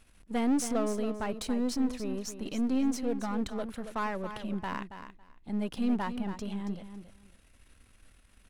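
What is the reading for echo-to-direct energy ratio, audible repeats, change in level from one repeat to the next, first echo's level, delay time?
−10.0 dB, 2, −15.5 dB, −10.0 dB, 277 ms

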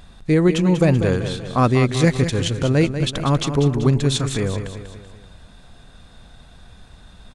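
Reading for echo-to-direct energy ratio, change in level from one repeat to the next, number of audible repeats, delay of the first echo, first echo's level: −8.5 dB, −6.0 dB, 4, 192 ms, −9.5 dB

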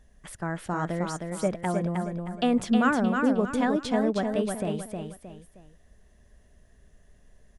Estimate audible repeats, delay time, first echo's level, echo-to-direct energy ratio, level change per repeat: 3, 312 ms, −4.5 dB, −4.0 dB, −9.0 dB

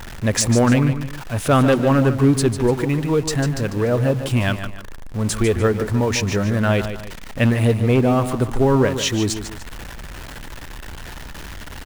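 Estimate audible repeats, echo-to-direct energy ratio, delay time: 2, −9.5 dB, 148 ms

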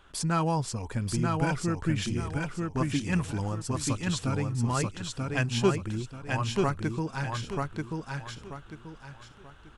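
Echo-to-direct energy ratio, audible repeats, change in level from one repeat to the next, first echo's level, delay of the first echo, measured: −2.5 dB, 4, −10.0 dB, −3.0 dB, 936 ms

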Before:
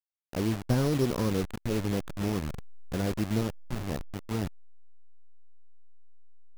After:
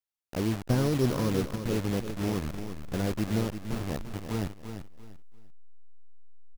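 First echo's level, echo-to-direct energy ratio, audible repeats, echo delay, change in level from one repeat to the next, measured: −9.0 dB, −8.5 dB, 3, 343 ms, −11.5 dB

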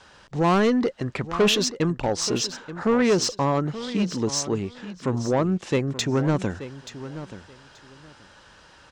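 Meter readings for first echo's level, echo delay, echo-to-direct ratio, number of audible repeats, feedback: −13.5 dB, 880 ms, −13.5 dB, 2, 19%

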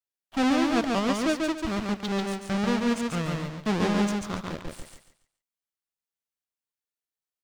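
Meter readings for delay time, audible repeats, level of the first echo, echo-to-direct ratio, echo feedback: 141 ms, 3, −3.0 dB, −2.5 dB, 28%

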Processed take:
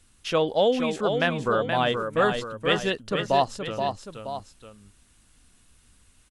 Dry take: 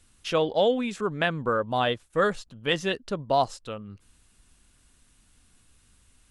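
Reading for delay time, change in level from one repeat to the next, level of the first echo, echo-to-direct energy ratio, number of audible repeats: 475 ms, −6.0 dB, −6.0 dB, −5.0 dB, 2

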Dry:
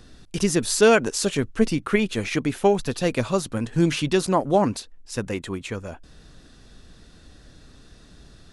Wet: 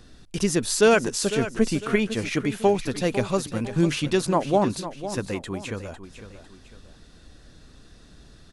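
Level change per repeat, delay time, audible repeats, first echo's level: −8.0 dB, 502 ms, 2, −12.0 dB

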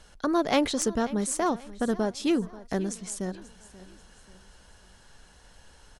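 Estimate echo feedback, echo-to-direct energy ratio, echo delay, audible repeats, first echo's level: 41%, −17.5 dB, 536 ms, 3, −18.5 dB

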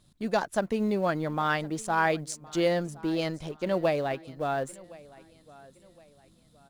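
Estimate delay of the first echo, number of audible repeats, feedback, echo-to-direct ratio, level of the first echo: 1,065 ms, 2, 36%, −21.5 dB, −22.0 dB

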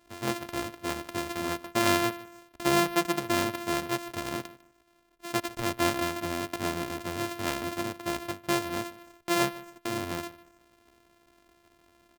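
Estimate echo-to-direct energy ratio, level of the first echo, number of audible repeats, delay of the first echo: −19.0 dB, −19.0 dB, 2, 151 ms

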